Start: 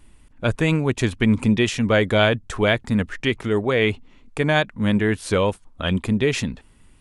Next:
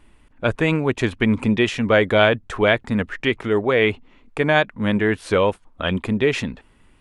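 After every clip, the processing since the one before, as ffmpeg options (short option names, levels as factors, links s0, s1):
-af "bass=f=250:g=-6,treble=f=4000:g=-10,volume=1.41"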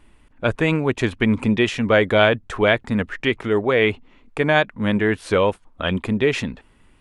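-af anull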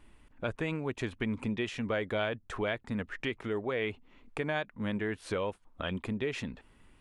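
-af "acompressor=threshold=0.0251:ratio=2,volume=0.531"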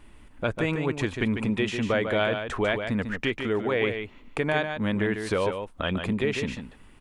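-af "aecho=1:1:147:0.447,volume=2.24"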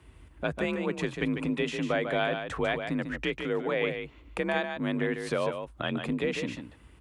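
-af "afreqshift=44,volume=0.668"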